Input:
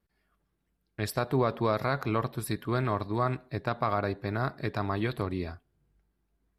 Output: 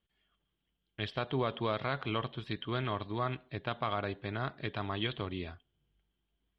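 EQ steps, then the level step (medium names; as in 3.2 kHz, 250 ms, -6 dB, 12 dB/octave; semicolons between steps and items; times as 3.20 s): four-pole ladder low-pass 3.3 kHz, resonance 85%; +6.5 dB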